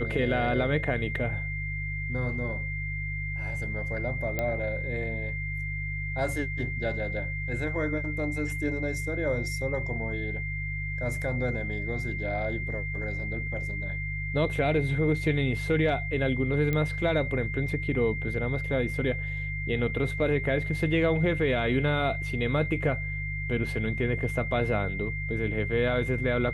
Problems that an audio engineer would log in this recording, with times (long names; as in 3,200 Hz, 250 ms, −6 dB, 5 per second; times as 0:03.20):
mains hum 50 Hz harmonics 3 −34 dBFS
whistle 2,100 Hz −34 dBFS
0:04.39: click −15 dBFS
0:16.73: click −16 dBFS